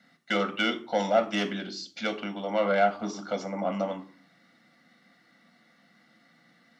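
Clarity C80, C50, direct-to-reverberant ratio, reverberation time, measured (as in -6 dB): 18.5 dB, 14.5 dB, 6.5 dB, 0.45 s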